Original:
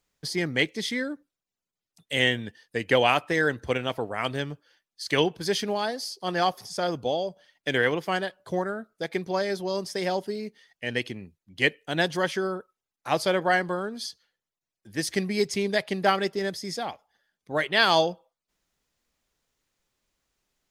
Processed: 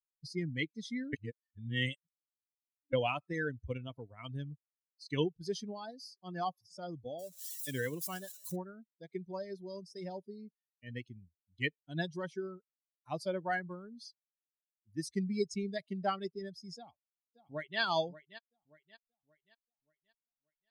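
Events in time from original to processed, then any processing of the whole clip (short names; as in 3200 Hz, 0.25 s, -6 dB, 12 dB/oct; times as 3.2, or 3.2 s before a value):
1.13–2.93 reverse
7.19–8.56 switching spikes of -20 dBFS
16.76–17.8 echo throw 0.58 s, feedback 60%, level -7.5 dB
whole clip: per-bin expansion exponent 2; low shelf 250 Hz +10.5 dB; gain -9 dB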